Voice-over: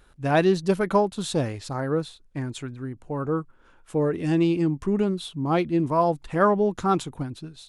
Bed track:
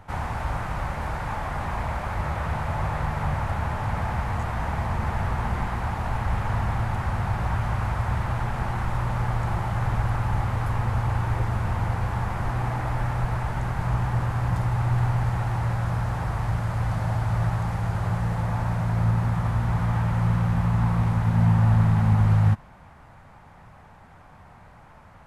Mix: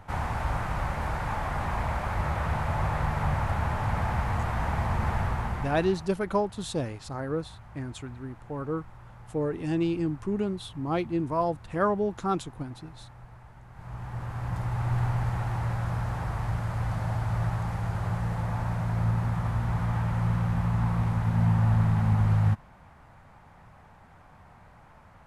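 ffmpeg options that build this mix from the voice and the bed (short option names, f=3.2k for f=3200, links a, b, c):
-filter_complex "[0:a]adelay=5400,volume=-5.5dB[a];[1:a]volume=17.5dB,afade=t=out:st=5.13:d=0.99:silence=0.0841395,afade=t=in:st=13.69:d=1.27:silence=0.11885[b];[a][b]amix=inputs=2:normalize=0"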